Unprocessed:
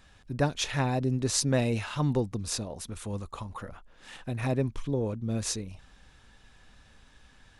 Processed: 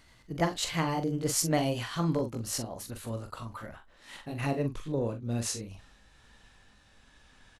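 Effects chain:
pitch glide at a constant tempo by +3 semitones ending unshifted
low-shelf EQ 180 Hz −3.5 dB
double-tracking delay 43 ms −8 dB

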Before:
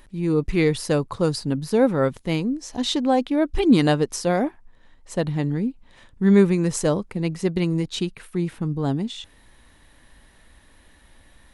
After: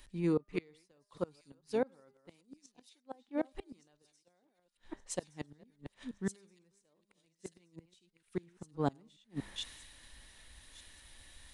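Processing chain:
delay that plays each chunk backwards 235 ms, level −11 dB
low-shelf EQ 210 Hz −9.5 dB
hum removal 202.5 Hz, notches 10
reversed playback
downward compressor 16 to 1, threshold −33 dBFS, peak gain reduction 19.5 dB
reversed playback
gate with flip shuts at −29 dBFS, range −29 dB
on a send: delay with a high-pass on its return 1,172 ms, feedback 63%, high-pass 5,200 Hz, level −5 dB
on the sum: downsampling to 22,050 Hz
multiband upward and downward expander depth 70%
level +3 dB

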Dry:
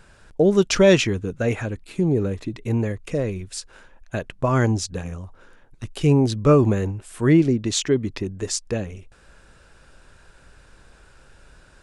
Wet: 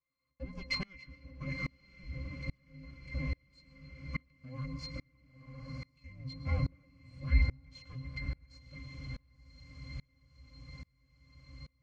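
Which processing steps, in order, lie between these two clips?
lower of the sound and its delayed copy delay 3.3 ms
high-pass filter 170 Hz 12 dB per octave
flat-topped bell 4,200 Hz +15 dB 2.5 octaves
frequency shifter −380 Hz
resonances in every octave C, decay 0.13 s
feedback delay with all-pass diffusion 1,049 ms, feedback 61%, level −10 dB
convolution reverb RT60 0.95 s, pre-delay 102 ms, DRR 14 dB
tremolo with a ramp in dB swelling 1.2 Hz, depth 31 dB
level −1 dB

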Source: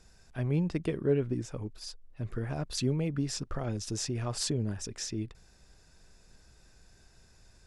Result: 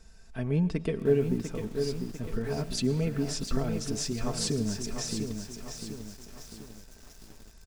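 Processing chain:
low-shelf EQ 130 Hz +5 dB
comb filter 4.5 ms, depth 55%
delay with a high-pass on its return 250 ms, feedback 84%, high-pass 3,800 Hz, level −22 dB
on a send at −16 dB: convolution reverb RT60 0.85 s, pre-delay 70 ms
on the sum: feedback echo at a low word length 698 ms, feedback 55%, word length 8 bits, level −6.5 dB

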